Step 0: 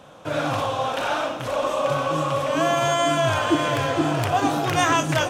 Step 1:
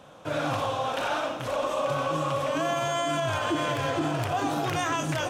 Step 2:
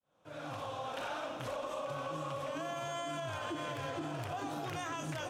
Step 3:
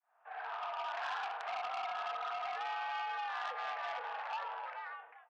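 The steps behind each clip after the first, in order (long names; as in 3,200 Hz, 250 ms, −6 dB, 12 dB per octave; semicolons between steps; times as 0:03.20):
brickwall limiter −15 dBFS, peak gain reduction 6.5 dB; level −3.5 dB
fade in at the beginning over 1.25 s; downward compressor, threshold −30 dBFS, peak gain reduction 7 dB; level −6 dB
fade-out on the ending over 1.00 s; single-sideband voice off tune +160 Hz 490–2,200 Hz; saturating transformer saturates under 2,500 Hz; level +3.5 dB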